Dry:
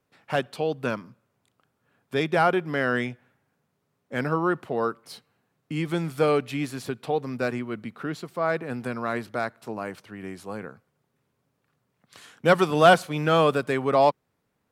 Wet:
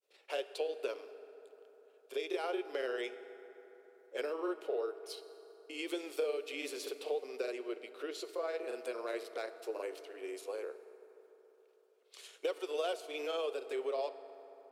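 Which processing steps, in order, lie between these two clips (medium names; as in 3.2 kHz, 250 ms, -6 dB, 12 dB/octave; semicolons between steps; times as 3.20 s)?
elliptic high-pass 380 Hz, stop band 50 dB; high-order bell 1.2 kHz -11 dB; compression 10:1, threshold -32 dBFS, peak gain reduction 15.5 dB; granulator, spray 24 ms, pitch spread up and down by 0 st; reverberation RT60 4.0 s, pre-delay 4 ms, DRR 11 dB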